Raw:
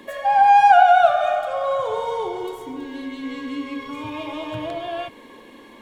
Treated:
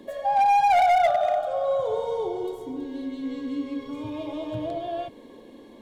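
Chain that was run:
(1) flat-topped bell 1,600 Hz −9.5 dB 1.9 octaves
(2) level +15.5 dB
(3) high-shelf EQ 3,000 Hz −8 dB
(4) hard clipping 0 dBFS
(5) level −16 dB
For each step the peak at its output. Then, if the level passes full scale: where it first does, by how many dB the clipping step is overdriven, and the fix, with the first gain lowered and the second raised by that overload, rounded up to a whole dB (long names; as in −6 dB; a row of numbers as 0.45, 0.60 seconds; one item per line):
−5.0, +10.5, +10.0, 0.0, −16.0 dBFS
step 2, 10.0 dB
step 2 +5.5 dB, step 5 −6 dB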